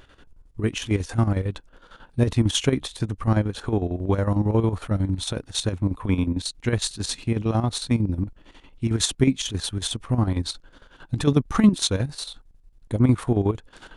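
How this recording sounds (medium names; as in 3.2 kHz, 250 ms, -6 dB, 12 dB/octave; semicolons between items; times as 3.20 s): chopped level 11 Hz, depth 65%, duty 60%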